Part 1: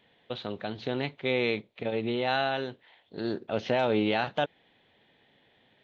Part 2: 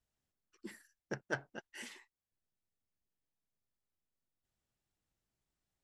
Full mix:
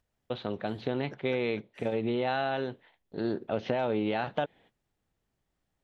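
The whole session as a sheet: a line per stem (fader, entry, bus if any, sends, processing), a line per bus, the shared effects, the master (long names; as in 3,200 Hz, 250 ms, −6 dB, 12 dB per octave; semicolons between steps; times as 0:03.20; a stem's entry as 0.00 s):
+2.5 dB, 0.00 s, no send, noise gate −55 dBFS, range −28 dB
−5.5 dB, 0.00 s, no send, upward compression, threshold −59 dBFS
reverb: not used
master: high-shelf EQ 2,500 Hz −9.5 dB; downward compressor, threshold −25 dBFS, peak gain reduction 6 dB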